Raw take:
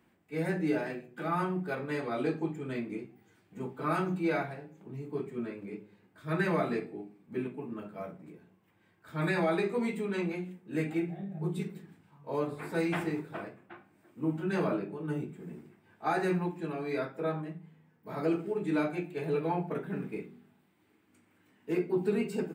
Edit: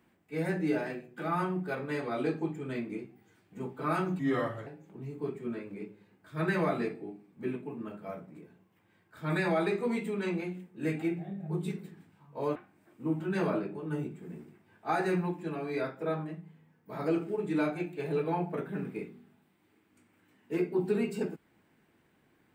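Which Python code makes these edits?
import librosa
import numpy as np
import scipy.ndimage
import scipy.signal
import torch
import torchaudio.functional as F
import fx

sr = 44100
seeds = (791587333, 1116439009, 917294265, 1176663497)

y = fx.edit(x, sr, fx.speed_span(start_s=4.19, length_s=0.39, speed=0.82),
    fx.cut(start_s=12.47, length_s=1.26), tone=tone)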